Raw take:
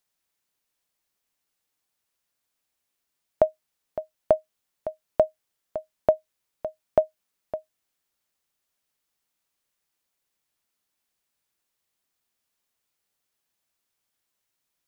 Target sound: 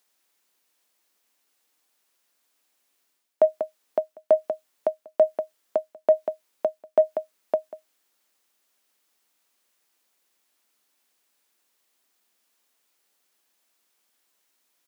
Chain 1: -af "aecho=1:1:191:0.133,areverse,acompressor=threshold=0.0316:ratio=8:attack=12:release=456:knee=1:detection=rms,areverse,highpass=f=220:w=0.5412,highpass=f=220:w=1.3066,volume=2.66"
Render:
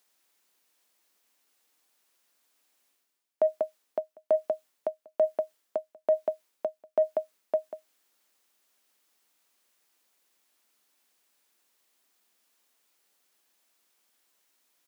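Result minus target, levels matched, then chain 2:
compression: peak gain reduction +6.5 dB
-af "aecho=1:1:191:0.133,areverse,acompressor=threshold=0.075:ratio=8:attack=12:release=456:knee=1:detection=rms,areverse,highpass=f=220:w=0.5412,highpass=f=220:w=1.3066,volume=2.66"

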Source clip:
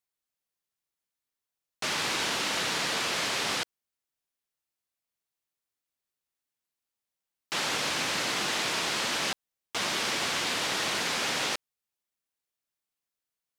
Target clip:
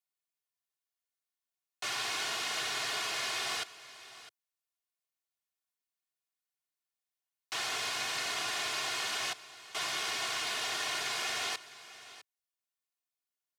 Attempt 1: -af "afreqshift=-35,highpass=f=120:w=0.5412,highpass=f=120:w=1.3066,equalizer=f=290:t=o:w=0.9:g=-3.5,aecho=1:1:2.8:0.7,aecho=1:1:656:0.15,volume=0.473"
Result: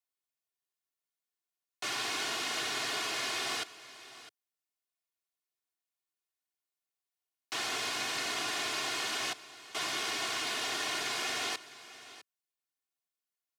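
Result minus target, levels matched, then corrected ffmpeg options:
250 Hz band +6.5 dB
-af "afreqshift=-35,highpass=f=120:w=0.5412,highpass=f=120:w=1.3066,equalizer=f=290:t=o:w=0.9:g=-12,aecho=1:1:2.8:0.7,aecho=1:1:656:0.15,volume=0.473"

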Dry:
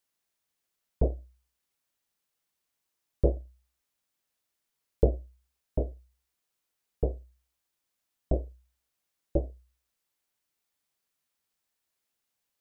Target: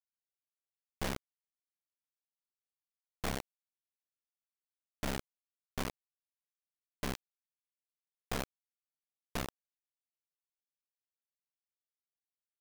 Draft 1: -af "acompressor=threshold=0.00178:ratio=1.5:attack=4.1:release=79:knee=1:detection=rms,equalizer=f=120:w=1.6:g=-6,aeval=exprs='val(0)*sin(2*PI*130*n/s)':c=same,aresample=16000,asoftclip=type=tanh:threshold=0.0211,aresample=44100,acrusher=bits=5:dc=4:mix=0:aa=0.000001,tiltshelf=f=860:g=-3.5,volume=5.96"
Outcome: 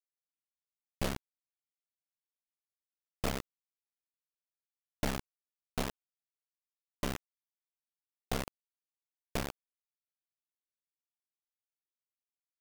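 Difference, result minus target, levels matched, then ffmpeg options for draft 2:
saturation: distortion -8 dB
-af "acompressor=threshold=0.00178:ratio=1.5:attack=4.1:release=79:knee=1:detection=rms,equalizer=f=120:w=1.6:g=-6,aeval=exprs='val(0)*sin(2*PI*130*n/s)':c=same,aresample=16000,asoftclip=type=tanh:threshold=0.00668,aresample=44100,acrusher=bits=5:dc=4:mix=0:aa=0.000001,tiltshelf=f=860:g=-3.5,volume=5.96"

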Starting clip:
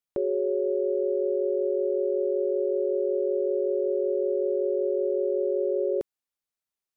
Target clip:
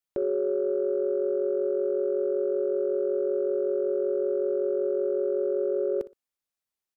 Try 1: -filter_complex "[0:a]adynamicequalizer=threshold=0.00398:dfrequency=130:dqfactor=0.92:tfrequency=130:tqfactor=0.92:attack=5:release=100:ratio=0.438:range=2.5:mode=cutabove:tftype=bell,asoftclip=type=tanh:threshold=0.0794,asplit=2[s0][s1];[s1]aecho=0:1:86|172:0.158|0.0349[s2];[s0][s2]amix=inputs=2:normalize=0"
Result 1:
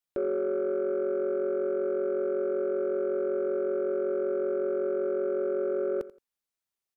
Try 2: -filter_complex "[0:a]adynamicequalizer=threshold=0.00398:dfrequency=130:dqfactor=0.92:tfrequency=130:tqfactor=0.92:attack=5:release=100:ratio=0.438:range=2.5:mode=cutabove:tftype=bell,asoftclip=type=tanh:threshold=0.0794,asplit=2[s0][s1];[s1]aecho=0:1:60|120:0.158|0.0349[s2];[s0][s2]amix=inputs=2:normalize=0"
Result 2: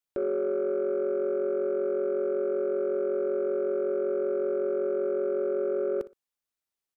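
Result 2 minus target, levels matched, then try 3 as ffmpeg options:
saturation: distortion +11 dB
-filter_complex "[0:a]adynamicequalizer=threshold=0.00398:dfrequency=130:dqfactor=0.92:tfrequency=130:tqfactor=0.92:attack=5:release=100:ratio=0.438:range=2.5:mode=cutabove:tftype=bell,asoftclip=type=tanh:threshold=0.168,asplit=2[s0][s1];[s1]aecho=0:1:60|120:0.158|0.0349[s2];[s0][s2]amix=inputs=2:normalize=0"

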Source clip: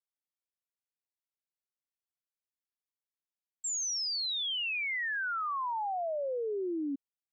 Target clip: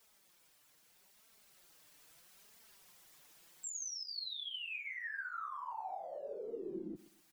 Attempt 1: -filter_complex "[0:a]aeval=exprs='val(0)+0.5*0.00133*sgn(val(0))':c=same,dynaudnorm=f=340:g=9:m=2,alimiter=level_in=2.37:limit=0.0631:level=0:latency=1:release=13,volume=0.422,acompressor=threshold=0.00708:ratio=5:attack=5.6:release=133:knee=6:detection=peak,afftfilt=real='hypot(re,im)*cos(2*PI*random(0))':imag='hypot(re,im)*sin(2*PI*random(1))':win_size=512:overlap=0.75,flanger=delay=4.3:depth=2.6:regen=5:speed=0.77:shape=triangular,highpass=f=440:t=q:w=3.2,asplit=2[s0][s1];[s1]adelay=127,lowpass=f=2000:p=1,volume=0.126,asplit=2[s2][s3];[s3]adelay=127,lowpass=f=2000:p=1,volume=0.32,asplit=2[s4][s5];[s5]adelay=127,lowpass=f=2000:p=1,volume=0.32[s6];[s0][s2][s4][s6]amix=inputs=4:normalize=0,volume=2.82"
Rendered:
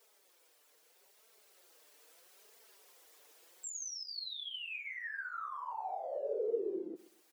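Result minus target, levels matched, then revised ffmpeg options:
500 Hz band +5.5 dB
-filter_complex "[0:a]aeval=exprs='val(0)+0.5*0.00133*sgn(val(0))':c=same,dynaudnorm=f=340:g=9:m=2,alimiter=level_in=2.37:limit=0.0631:level=0:latency=1:release=13,volume=0.422,acompressor=threshold=0.00708:ratio=5:attack=5.6:release=133:knee=6:detection=peak,afftfilt=real='hypot(re,im)*cos(2*PI*random(0))':imag='hypot(re,im)*sin(2*PI*random(1))':win_size=512:overlap=0.75,flanger=delay=4.3:depth=2.6:regen=5:speed=0.77:shape=triangular,asplit=2[s0][s1];[s1]adelay=127,lowpass=f=2000:p=1,volume=0.126,asplit=2[s2][s3];[s3]adelay=127,lowpass=f=2000:p=1,volume=0.32,asplit=2[s4][s5];[s5]adelay=127,lowpass=f=2000:p=1,volume=0.32[s6];[s0][s2][s4][s6]amix=inputs=4:normalize=0,volume=2.82"

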